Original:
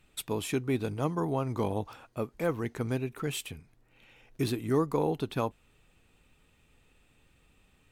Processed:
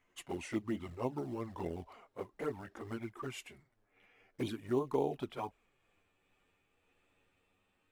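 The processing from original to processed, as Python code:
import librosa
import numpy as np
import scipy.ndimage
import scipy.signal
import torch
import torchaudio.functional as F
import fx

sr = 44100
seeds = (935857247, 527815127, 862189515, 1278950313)

p1 = fx.pitch_glide(x, sr, semitones=-3.5, runs='ending unshifted')
p2 = fx.high_shelf(p1, sr, hz=2300.0, db=-6.0)
p3 = fx.quant_float(p2, sr, bits=2)
p4 = p2 + (p3 * 10.0 ** (-8.0 / 20.0))
p5 = fx.env_flanger(p4, sr, rest_ms=11.4, full_db=-22.5)
p6 = fx.bass_treble(p5, sr, bass_db=-11, treble_db=-4)
y = p6 * 10.0 ** (-3.0 / 20.0)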